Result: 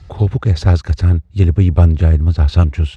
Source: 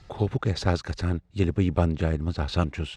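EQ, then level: bell 71 Hz +15 dB 1.5 oct; +4.0 dB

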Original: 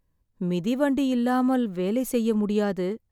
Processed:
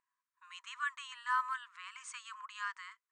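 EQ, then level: brick-wall FIR band-pass 950–9200 Hz; bell 3900 Hz -9.5 dB 1.6 oct; high shelf 5000 Hz -8.5 dB; +2.5 dB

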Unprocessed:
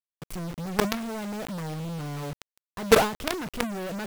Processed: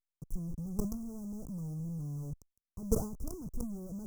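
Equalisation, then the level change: elliptic band-stop 1100–6100 Hz, stop band 40 dB; passive tone stack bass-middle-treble 10-0-1; +10.0 dB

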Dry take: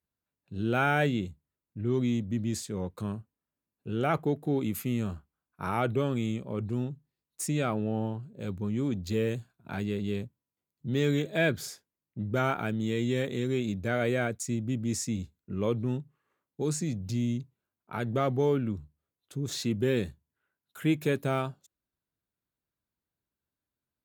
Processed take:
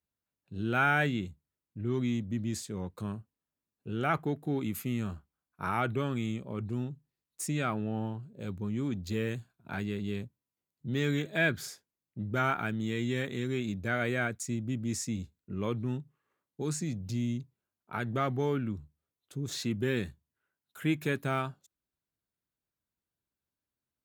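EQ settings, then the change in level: dynamic EQ 510 Hz, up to -5 dB, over -41 dBFS, Q 2.1; dynamic EQ 1600 Hz, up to +5 dB, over -46 dBFS, Q 1.1; -2.5 dB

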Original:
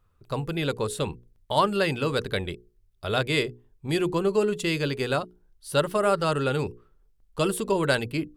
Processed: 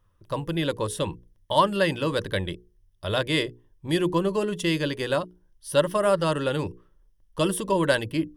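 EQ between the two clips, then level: ripple EQ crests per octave 1.2, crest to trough 8 dB; 0.0 dB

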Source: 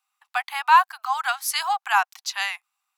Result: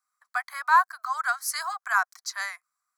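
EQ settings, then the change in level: bell 14000 Hz -9 dB 0.41 oct; fixed phaser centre 560 Hz, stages 8; notch 3600 Hz, Q 7.2; 0.0 dB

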